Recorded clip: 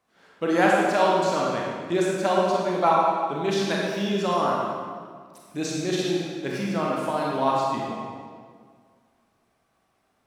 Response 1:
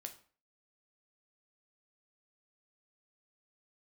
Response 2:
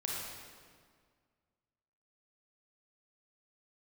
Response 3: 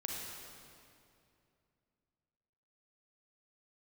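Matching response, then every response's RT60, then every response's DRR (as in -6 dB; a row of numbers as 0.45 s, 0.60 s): 2; 0.40 s, 1.9 s, 2.6 s; 5.5 dB, -3.5 dB, -2.0 dB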